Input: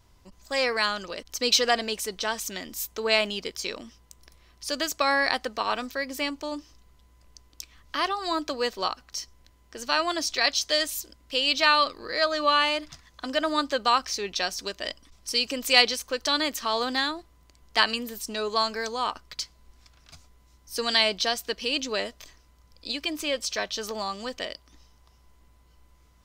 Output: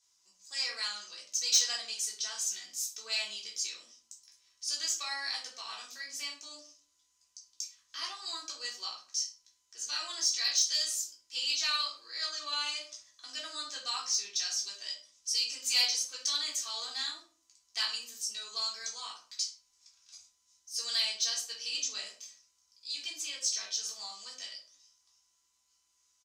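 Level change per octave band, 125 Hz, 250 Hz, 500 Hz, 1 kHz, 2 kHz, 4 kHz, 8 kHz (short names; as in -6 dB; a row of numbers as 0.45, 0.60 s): n/a, under -25 dB, -26.0 dB, -18.0 dB, -13.5 dB, -5.0 dB, +3.0 dB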